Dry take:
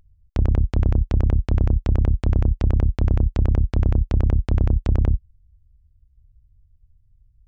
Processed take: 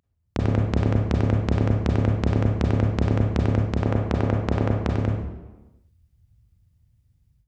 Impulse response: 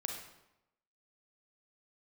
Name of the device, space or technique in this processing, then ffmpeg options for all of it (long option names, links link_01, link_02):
far laptop microphone: -filter_complex "[0:a]asettb=1/sr,asplit=3[link_01][link_02][link_03];[link_01]atrim=end=3.774[link_04];[link_02]atrim=start=3.77:end=4.89,asetpts=PTS-STARTPTS,afade=type=in:duration=0.004:curve=qsin,afade=type=out:start_time=1.116:duration=0.004:curve=qsin,equalizer=frequency=860:width_type=o:width=2.9:gain=5.5[link_05];[link_03]atrim=start=4.886[link_06];[link_04][link_05]acrossfade=duration=0.004:curve1=hsin:curve2=qsin[link_07];[link_07][link_06]acrossfade=duration=0.004:curve1=qsin:curve2=hsin[link_08];[1:a]atrim=start_sample=2205[link_09];[link_08][link_09]afir=irnorm=-1:irlink=0,highpass=140,dynaudnorm=framelen=200:gausssize=3:maxgain=16dB,volume=-5.5dB"